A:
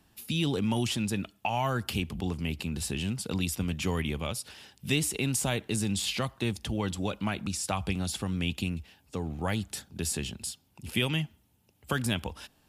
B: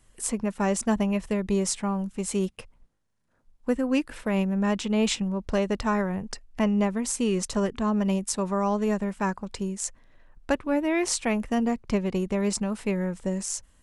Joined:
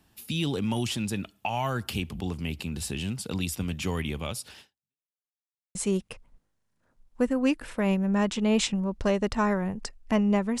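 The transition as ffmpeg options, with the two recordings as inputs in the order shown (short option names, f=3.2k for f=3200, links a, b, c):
-filter_complex "[0:a]apad=whole_dur=10.6,atrim=end=10.6,asplit=2[a][b];[a]atrim=end=5.04,asetpts=PTS-STARTPTS,afade=t=out:st=4.6:d=0.44:c=exp[c];[b]atrim=start=5.04:end=5.75,asetpts=PTS-STARTPTS,volume=0[d];[1:a]atrim=start=2.23:end=7.08,asetpts=PTS-STARTPTS,afade=t=in:d=0.004:c=hsin[e];[c][d][e]concat=n=3:v=0:a=1"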